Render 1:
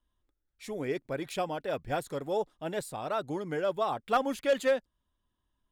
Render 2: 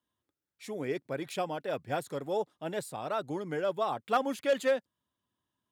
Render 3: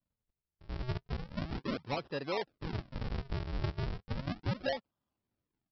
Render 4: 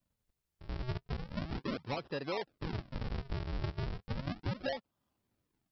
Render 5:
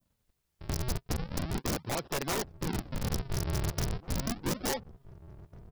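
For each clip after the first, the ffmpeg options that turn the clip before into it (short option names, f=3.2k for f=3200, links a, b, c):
-af "highpass=f=98:w=0.5412,highpass=f=98:w=1.3066,volume=-1dB"
-af "equalizer=f=1.7k:w=1.5:g=-8,acompressor=threshold=-31dB:ratio=6,aresample=11025,acrusher=samples=25:mix=1:aa=0.000001:lfo=1:lforange=40:lforate=0.35,aresample=44100"
-af "acompressor=threshold=-45dB:ratio=2,volume=5.5dB"
-filter_complex "[0:a]adynamicequalizer=threshold=0.00224:dfrequency=2300:dqfactor=0.74:tfrequency=2300:tqfactor=0.74:attack=5:release=100:ratio=0.375:range=2:mode=cutabove:tftype=bell,aeval=exprs='(mod(42.2*val(0)+1,2)-1)/42.2':c=same,asplit=2[a][b];[b]adelay=1749,volume=-18dB,highshelf=f=4k:g=-39.4[c];[a][c]amix=inputs=2:normalize=0,volume=6.5dB"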